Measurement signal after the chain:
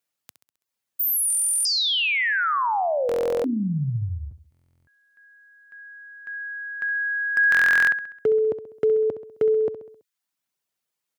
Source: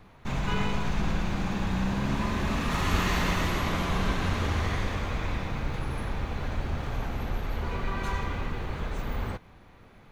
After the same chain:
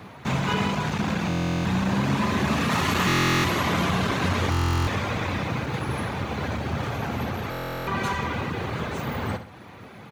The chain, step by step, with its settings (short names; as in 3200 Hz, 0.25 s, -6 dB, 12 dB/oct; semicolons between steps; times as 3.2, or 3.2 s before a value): in parallel at +1 dB: compressor 10:1, threshold -39 dBFS; on the sum: hard clip -21 dBFS; reverb removal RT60 0.55 s; HPF 92 Hz 24 dB/oct; on a send: feedback echo 66 ms, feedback 51%, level -11.5 dB; on the sum: stuck buffer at 1.28/3.07/4.5/7.5, samples 1024, times 15; gain +6 dB